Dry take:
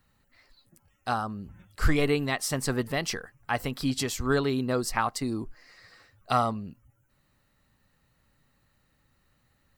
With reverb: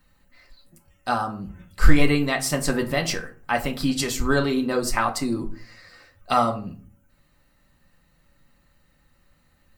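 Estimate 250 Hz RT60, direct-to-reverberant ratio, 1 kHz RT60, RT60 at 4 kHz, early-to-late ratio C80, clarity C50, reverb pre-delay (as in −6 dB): 0.60 s, 1.5 dB, 0.40 s, 0.25 s, 19.0 dB, 14.0 dB, 3 ms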